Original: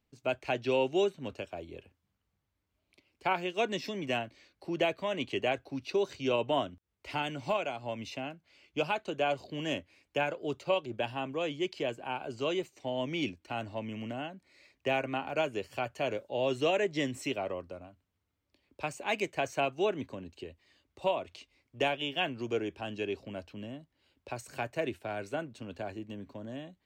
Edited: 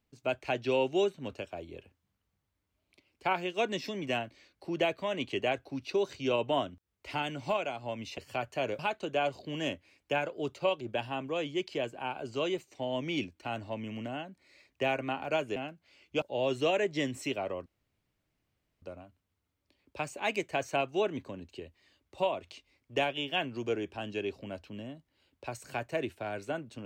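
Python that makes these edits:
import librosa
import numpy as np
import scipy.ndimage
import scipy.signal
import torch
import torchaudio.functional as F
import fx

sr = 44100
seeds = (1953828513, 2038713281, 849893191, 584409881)

y = fx.edit(x, sr, fx.swap(start_s=8.18, length_s=0.66, other_s=15.61, other_length_s=0.61),
    fx.insert_room_tone(at_s=17.66, length_s=1.16), tone=tone)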